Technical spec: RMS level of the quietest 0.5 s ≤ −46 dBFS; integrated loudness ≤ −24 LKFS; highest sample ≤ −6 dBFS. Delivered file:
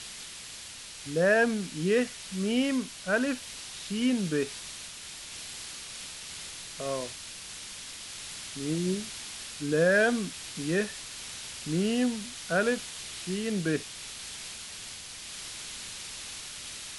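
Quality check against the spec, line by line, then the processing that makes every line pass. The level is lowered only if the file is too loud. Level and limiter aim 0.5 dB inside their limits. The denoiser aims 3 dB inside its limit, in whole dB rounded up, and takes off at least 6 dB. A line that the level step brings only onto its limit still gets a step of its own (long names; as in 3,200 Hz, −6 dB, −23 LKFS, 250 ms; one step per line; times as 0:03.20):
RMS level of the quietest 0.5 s −44 dBFS: out of spec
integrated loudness −31.5 LKFS: in spec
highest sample −14.0 dBFS: in spec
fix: broadband denoise 6 dB, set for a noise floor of −44 dBFS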